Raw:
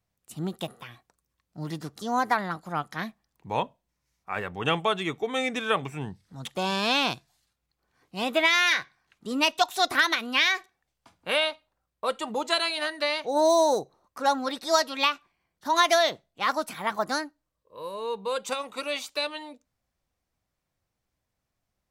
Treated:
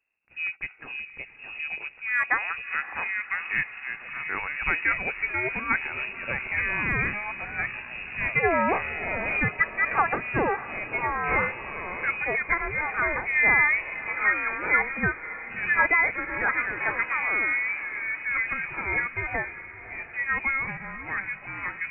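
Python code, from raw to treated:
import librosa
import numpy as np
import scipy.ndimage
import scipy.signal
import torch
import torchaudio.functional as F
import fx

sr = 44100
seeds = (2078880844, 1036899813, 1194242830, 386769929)

y = fx.echo_pitch(x, sr, ms=403, semitones=-4, count=2, db_per_echo=-6.0)
y = fx.echo_diffused(y, sr, ms=592, feedback_pct=57, wet_db=-14.0)
y = fx.freq_invert(y, sr, carrier_hz=2700)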